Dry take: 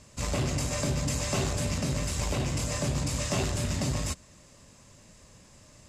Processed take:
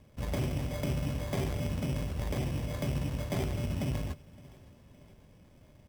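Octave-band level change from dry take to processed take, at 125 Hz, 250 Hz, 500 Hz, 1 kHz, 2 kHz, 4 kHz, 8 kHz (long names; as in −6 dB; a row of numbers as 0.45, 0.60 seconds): −2.5, −2.5, −4.0, −6.5, −7.0, −10.0, −16.5 decibels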